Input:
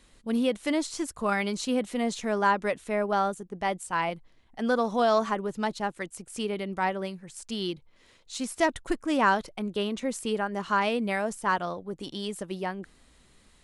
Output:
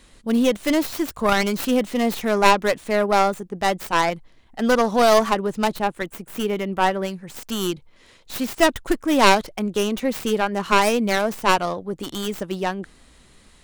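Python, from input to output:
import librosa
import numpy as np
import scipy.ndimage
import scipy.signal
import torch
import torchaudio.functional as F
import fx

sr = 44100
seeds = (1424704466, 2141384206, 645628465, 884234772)

y = fx.tracing_dist(x, sr, depth_ms=0.42)
y = fx.peak_eq(y, sr, hz=5500.0, db=-6.0, octaves=1.2, at=(5.76, 7.03))
y = y * 10.0 ** (7.5 / 20.0)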